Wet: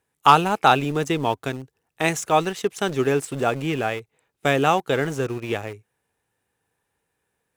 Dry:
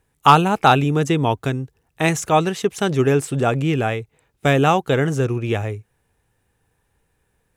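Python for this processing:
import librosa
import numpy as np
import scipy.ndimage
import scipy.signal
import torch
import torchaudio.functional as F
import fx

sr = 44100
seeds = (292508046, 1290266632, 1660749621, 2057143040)

p1 = fx.highpass(x, sr, hz=280.0, slope=6)
p2 = np.where(np.abs(p1) >= 10.0 ** (-25.5 / 20.0), p1, 0.0)
p3 = p1 + (p2 * librosa.db_to_amplitude(-6.5))
y = p3 * librosa.db_to_amplitude(-5.0)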